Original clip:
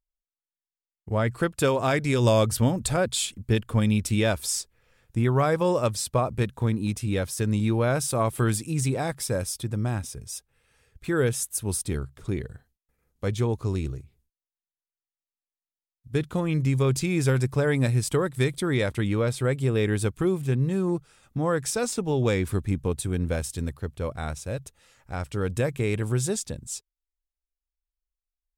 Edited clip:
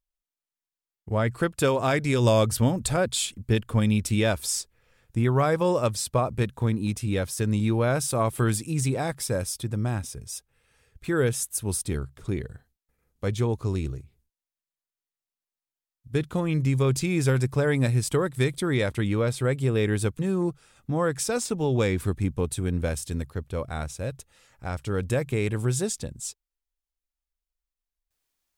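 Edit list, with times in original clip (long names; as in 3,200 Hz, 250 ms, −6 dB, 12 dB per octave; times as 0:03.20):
0:20.19–0:20.66: remove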